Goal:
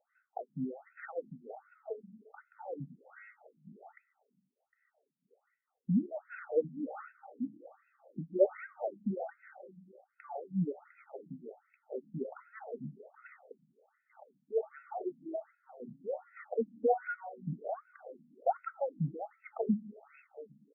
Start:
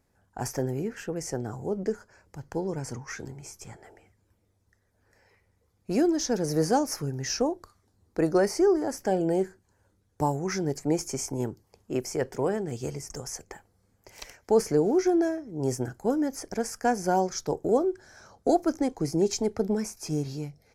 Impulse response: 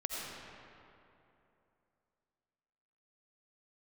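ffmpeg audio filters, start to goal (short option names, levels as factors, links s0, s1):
-filter_complex "[0:a]aecho=1:1:1.5:0.83,bandreject=f=106.1:t=h:w=4,bandreject=f=212.2:t=h:w=4,bandreject=f=318.3:t=h:w=4,bandreject=f=424.4:t=h:w=4,bandreject=f=530.5:t=h:w=4,bandreject=f=636.6:t=h:w=4,bandreject=f=742.7:t=h:w=4,bandreject=f=848.8:t=h:w=4,bandreject=f=954.9:t=h:w=4,bandreject=f=1061:t=h:w=4,bandreject=f=1167.1:t=h:w=4,bandreject=f=1273.2:t=h:w=4,bandreject=f=1379.3:t=h:w=4,bandreject=f=1485.4:t=h:w=4,bandreject=f=1591.5:t=h:w=4,bandreject=f=1697.6:t=h:w=4,bandreject=f=1803.7:t=h:w=4,bandreject=f=1909.8:t=h:w=4,bandreject=f=2015.9:t=h:w=4,bandreject=f=2122:t=h:w=4,bandreject=f=2228.1:t=h:w=4,bandreject=f=2334.2:t=h:w=4,bandreject=f=2440.3:t=h:w=4,bandreject=f=2546.4:t=h:w=4,bandreject=f=2652.5:t=h:w=4,bandreject=f=2758.6:t=h:w=4,bandreject=f=2864.7:t=h:w=4,bandreject=f=2970.8:t=h:w=4,bandreject=f=3076.9:t=h:w=4,bandreject=f=3183:t=h:w=4,bandreject=f=3289.1:t=h:w=4,bandreject=f=3395.2:t=h:w=4,bandreject=f=3501.3:t=h:w=4,bandreject=f=3607.4:t=h:w=4,bandreject=f=3713.5:t=h:w=4,bandreject=f=3819.6:t=h:w=4,bandreject=f=3925.7:t=h:w=4,acrossover=split=710[s0][s1];[s0]aeval=exprs='val(0)*(1-1/2+1/2*cos(2*PI*3.2*n/s))':c=same[s2];[s1]aeval=exprs='val(0)*(1-1/2-1/2*cos(2*PI*3.2*n/s))':c=same[s3];[s2][s3]amix=inputs=2:normalize=0,acontrast=74,asplit=2[s4][s5];[1:a]atrim=start_sample=2205,highshelf=f=3700:g=-6.5[s6];[s5][s6]afir=irnorm=-1:irlink=0,volume=0.0944[s7];[s4][s7]amix=inputs=2:normalize=0,afftfilt=real='re*between(b*sr/1024,200*pow(1900/200,0.5+0.5*sin(2*PI*1.3*pts/sr))/1.41,200*pow(1900/200,0.5+0.5*sin(2*PI*1.3*pts/sr))*1.41)':imag='im*between(b*sr/1024,200*pow(1900/200,0.5+0.5*sin(2*PI*1.3*pts/sr))/1.41,200*pow(1900/200,0.5+0.5*sin(2*PI*1.3*pts/sr))*1.41)':win_size=1024:overlap=0.75,volume=0.668"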